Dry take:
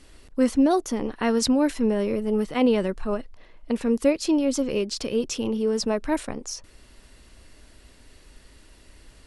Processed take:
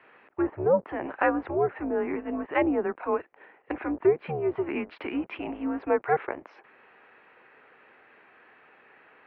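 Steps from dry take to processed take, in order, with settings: octave divider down 2 oct, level +1 dB; low-pass that closes with the level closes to 940 Hz, closed at -15 dBFS; mistuned SSB -170 Hz 600–2500 Hz; trim +6 dB

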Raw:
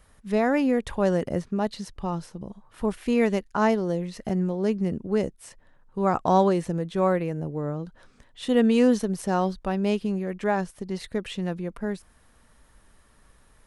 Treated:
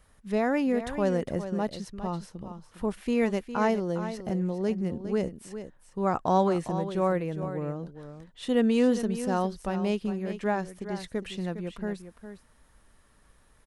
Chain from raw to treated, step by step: delay 407 ms -11 dB; trim -3.5 dB

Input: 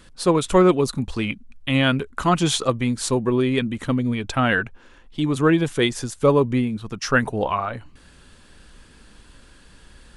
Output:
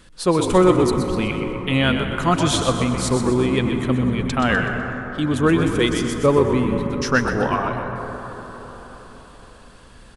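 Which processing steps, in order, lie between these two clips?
frequency-shifting echo 125 ms, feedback 45%, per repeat -56 Hz, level -8 dB; on a send at -6.5 dB: reverberation RT60 4.8 s, pre-delay 92 ms

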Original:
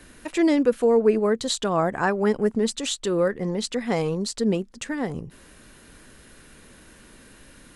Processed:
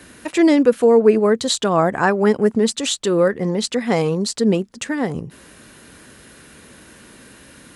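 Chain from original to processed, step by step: high-pass 78 Hz 12 dB/octave; trim +6 dB

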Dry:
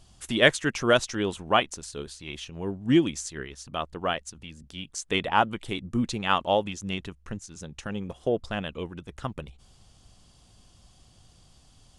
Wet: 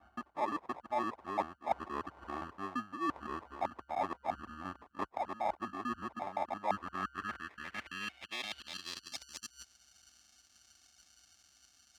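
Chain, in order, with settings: time reversed locally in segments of 172 ms; treble shelf 4.7 kHz -4.5 dB; static phaser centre 700 Hz, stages 8; reverse; compression 6:1, threshold -42 dBFS, peak gain reduction 24.5 dB; reverse; high-pass 48 Hz 24 dB/octave; RIAA curve playback; sample-and-hold 30×; band-pass sweep 950 Hz -> 5.9 kHz, 6.65–9.36 s; trim +14 dB

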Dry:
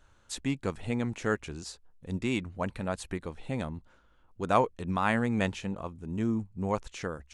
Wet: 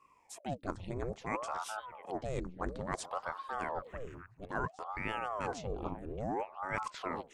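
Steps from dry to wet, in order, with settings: level rider gain up to 12 dB; dynamic bell 1.2 kHz, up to +7 dB, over -34 dBFS, Q 1.4; on a send: repeats whose band climbs or falls 439 ms, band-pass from 270 Hz, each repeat 1.4 oct, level -11.5 dB; on the sum: touch-sensitive phaser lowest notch 510 Hz, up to 2.9 kHz, full sweep at -16 dBFS; reverse; compression 5:1, threshold -30 dBFS, peak gain reduction 20 dB; reverse; ring modulator with a swept carrier 590 Hz, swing 85%, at 0.59 Hz; trim -2.5 dB

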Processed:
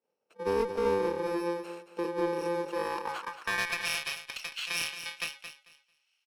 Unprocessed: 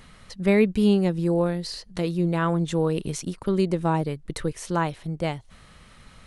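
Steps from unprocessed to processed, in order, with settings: bit-reversed sample order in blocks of 64 samples; frequency weighting A; expander -42 dBFS; bass shelf 190 Hz -8.5 dB; in parallel at -1 dB: peak limiter -17 dBFS, peak gain reduction 8 dB; on the sum: band-pass sweep 430 Hz -> 2.8 kHz, 2.58–3.88 s; one-sided clip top -32.5 dBFS; on a send: feedback delay 222 ms, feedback 18%, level -10 dB; on the sum: endings held to a fixed fall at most 170 dB/s; trim +5 dB

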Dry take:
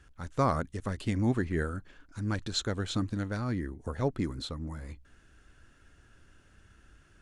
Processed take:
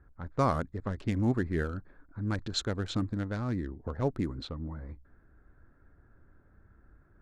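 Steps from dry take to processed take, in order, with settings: local Wiener filter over 15 samples; level-controlled noise filter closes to 1.8 kHz, open at -26 dBFS

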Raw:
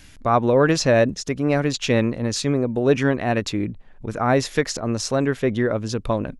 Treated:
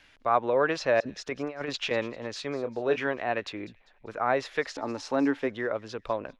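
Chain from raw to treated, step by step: three-band isolator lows -16 dB, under 410 Hz, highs -19 dB, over 4.1 kHz; 1.00–1.91 s: compressor with a negative ratio -28 dBFS, ratio -0.5; 2.62–3.07 s: doubling 26 ms -9 dB; 4.76–5.47 s: small resonant body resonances 280/870 Hz, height 17 dB -> 13 dB, ringing for 90 ms; feedback echo behind a high-pass 198 ms, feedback 42%, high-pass 3.4 kHz, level -16 dB; trim -4.5 dB

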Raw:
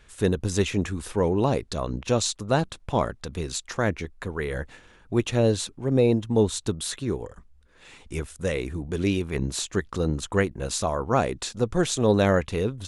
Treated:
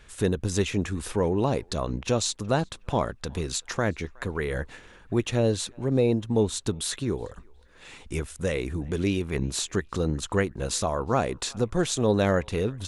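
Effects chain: in parallel at +2 dB: compression, threshold -30 dBFS, peak gain reduction 14.5 dB; on the sum: band-passed feedback delay 367 ms, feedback 41%, band-pass 1.6 kHz, level -24 dB; trim -4.5 dB

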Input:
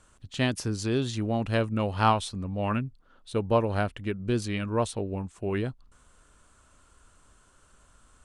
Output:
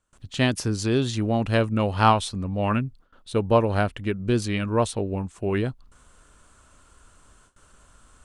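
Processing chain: gate with hold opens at -49 dBFS; trim +4.5 dB

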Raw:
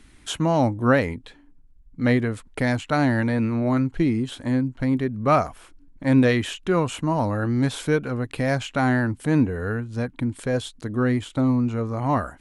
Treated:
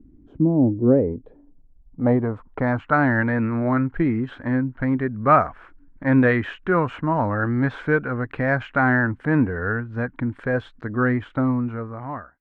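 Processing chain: fade out at the end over 1.05 s; low-pass sweep 290 Hz -> 1.6 kHz, 0.38–3.12 s

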